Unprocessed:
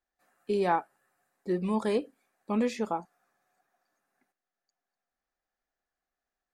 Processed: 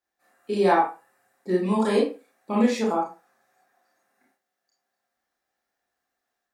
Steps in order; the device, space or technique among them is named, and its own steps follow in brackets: far laptop microphone (reverberation RT60 0.30 s, pre-delay 25 ms, DRR -4 dB; high-pass 190 Hz 6 dB/octave; level rider gain up to 3 dB)

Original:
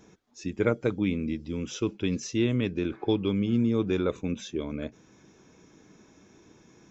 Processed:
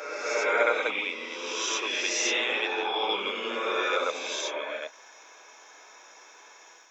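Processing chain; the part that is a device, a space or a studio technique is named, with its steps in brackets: ghost voice (reverse; reverberation RT60 2.2 s, pre-delay 52 ms, DRR -5.5 dB; reverse; high-pass 660 Hz 24 dB/octave); trim +6.5 dB

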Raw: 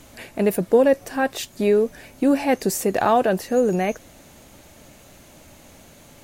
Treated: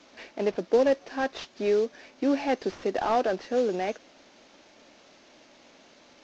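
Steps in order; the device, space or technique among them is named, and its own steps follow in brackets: early wireless headset (high-pass 240 Hz 24 dB/octave; CVSD coder 32 kbps); trim -5.5 dB

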